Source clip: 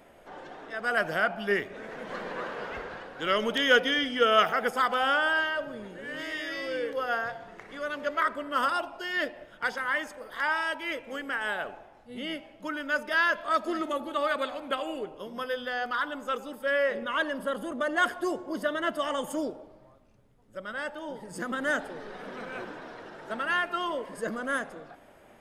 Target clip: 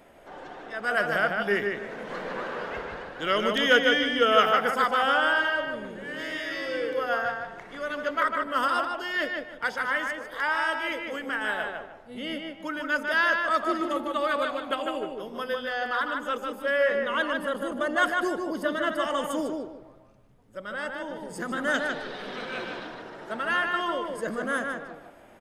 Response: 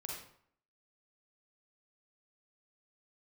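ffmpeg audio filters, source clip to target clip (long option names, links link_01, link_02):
-filter_complex "[0:a]asettb=1/sr,asplit=3[link_01][link_02][link_03];[link_01]atrim=end=21.744[link_04];[link_02]atrim=start=21.74:end=22.87,asetpts=PTS-STARTPTS,afade=type=in:duration=0.004:curve=qsin,afade=type=out:start_time=1.126:duration=0.004:curve=qsin,equalizer=frequency=3700:width_type=o:width=1.2:gain=11.5[link_05];[link_03]atrim=start=22.866[link_06];[link_04][link_05]acrossfade=duration=0.004:curve1=hsin:curve2=qsin[link_07];[link_07][link_06]acrossfade=duration=0.004:curve1=qsin:curve2=hsin,asplit=2[link_08][link_09];[link_09]adelay=151,lowpass=frequency=3500:poles=1,volume=-3.5dB,asplit=2[link_10][link_11];[link_11]adelay=151,lowpass=frequency=3500:poles=1,volume=0.27,asplit=2[link_12][link_13];[link_13]adelay=151,lowpass=frequency=3500:poles=1,volume=0.27,asplit=2[link_14][link_15];[link_15]adelay=151,lowpass=frequency=3500:poles=1,volume=0.27[link_16];[link_08][link_10][link_12][link_14][link_16]amix=inputs=5:normalize=0,volume=1dB"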